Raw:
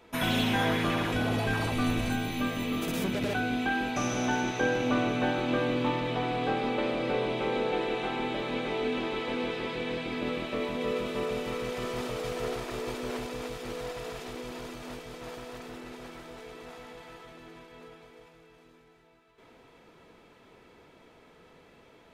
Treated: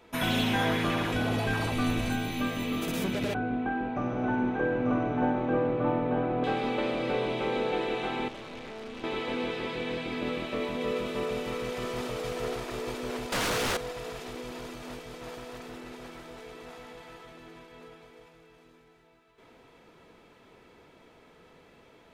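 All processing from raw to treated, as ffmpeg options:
-filter_complex "[0:a]asettb=1/sr,asplit=3[a][b][c];[a]atrim=end=3.344[d];[b]atrim=start=3.34:end=6.44,asetpts=PTS-STARTPTS,afade=t=in:d=0.004:c=qsin,afade=t=out:st=3.096:d=0.004:c=qsin,lowpass=1.2k,aecho=1:1:892:0.668,atrim=end_sample=136710[e];[c]atrim=start=6.436[f];[d][e]acrossfade=d=0.004:c1=hsin:c2=qsin[g];[g][f]acrossfade=d=0.004:c1=qsin:c2=hsin,asettb=1/sr,asplit=3[h][i][j];[h]atrim=end=8.284[k];[i]atrim=start=8.28:end=9.04,asetpts=PTS-STARTPTS,afade=t=in:d=0.004:c=qsin,afade=t=out:st=0.756:d=0.004:c=qsin,tremolo=f=220:d=0.919,aeval=exprs='(tanh(70.8*val(0)+0.4)-tanh(0.4))/70.8':c=same[l];[j]atrim=start=9.036[m];[k][l]acrossfade=d=0.004:c1=hsin:c2=qsin[n];[n][m]acrossfade=d=0.004:c1=qsin:c2=hsin,asettb=1/sr,asplit=3[o][p][q];[o]atrim=end=13.324[r];[p]atrim=start=13.32:end=13.77,asetpts=PTS-STARTPTS,afade=t=in:d=0.004:c=qsin,afade=t=out:st=0.446:d=0.004:c=qsin,highpass=f=120:w=0.5412,highpass=f=120:w=1.3066,aeval=exprs='0.0531*sin(PI/2*5.01*val(0)/0.0531)':c=same[s];[q]atrim=start=13.766[t];[r][s]acrossfade=d=0.004:c1=hsin:c2=qsin[u];[u][t]acrossfade=d=0.004:c1=qsin:c2=hsin"

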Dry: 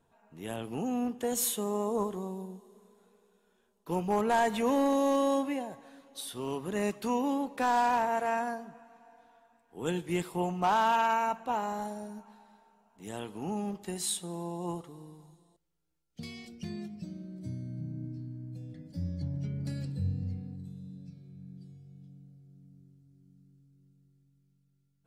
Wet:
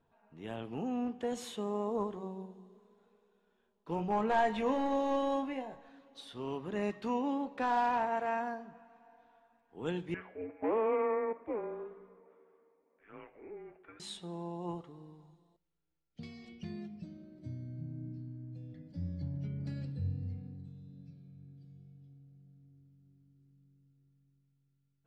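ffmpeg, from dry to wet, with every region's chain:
-filter_complex "[0:a]asettb=1/sr,asplit=3[a][b][c];[a]atrim=end=3.964[d];[b]atrim=start=3.96:end=5.89,asetpts=PTS-STARTPTS,afade=t=in:d=0.004:c=qsin,afade=t=out:st=1.926:d=0.004:c=qsin,asubboost=boost=10:cutoff=54,asplit=2[e][f];[f]adelay=23,volume=-8dB[g];[e][g]amix=inputs=2:normalize=0,atrim=end_sample=85113[h];[c]atrim=start=5.886[i];[d][h]acrossfade=d=0.004:c1=hsin:c2=qsin[j];[j][i]acrossfade=d=0.004:c1=qsin:c2=hsin,asettb=1/sr,asplit=3[k][l][m];[k]atrim=end=10.144[n];[l]atrim=start=10.14:end=14,asetpts=PTS-STARTPTS,afade=t=in:d=0.004:c=qsin,afade=t=out:st=3.856:d=0.004:c=qsin,asuperpass=centerf=1400:order=8:qfactor=0.74,afreqshift=-440[o];[m]atrim=start=13.996[p];[n][o]acrossfade=d=0.004:c1=hsin:c2=qsin[q];[q][p]acrossfade=d=0.004:c1=qsin:c2=hsin,lowpass=3.7k,bandreject=f=185.7:t=h:w=4,bandreject=f=371.4:t=h:w=4,bandreject=f=557.1:t=h:w=4,bandreject=f=742.8:t=h:w=4,bandreject=f=928.5:t=h:w=4,bandreject=f=1.1142k:t=h:w=4,bandreject=f=1.2999k:t=h:w=4,bandreject=f=1.4856k:t=h:w=4,bandreject=f=1.6713k:t=h:w=4,bandreject=f=1.857k:t=h:w=4,bandreject=f=2.0427k:t=h:w=4,bandreject=f=2.2284k:t=h:w=4,bandreject=f=2.4141k:t=h:w=4,bandreject=f=2.5998k:t=h:w=4,bandreject=f=2.7855k:t=h:w=4,bandreject=f=2.9712k:t=h:w=4,bandreject=f=3.1569k:t=h:w=4,bandreject=f=3.3426k:t=h:w=4,bandreject=f=3.5283k:t=h:w=4,bandreject=f=3.714k:t=h:w=4,bandreject=f=3.8997k:t=h:w=4,bandreject=f=4.0854k:t=h:w=4,bandreject=f=4.2711k:t=h:w=4,bandreject=f=4.4568k:t=h:w=4,bandreject=f=4.6425k:t=h:w=4,bandreject=f=4.8282k:t=h:w=4,bandreject=f=5.0139k:t=h:w=4,bandreject=f=5.1996k:t=h:w=4,bandreject=f=5.3853k:t=h:w=4,bandreject=f=5.571k:t=h:w=4,volume=-3.5dB"

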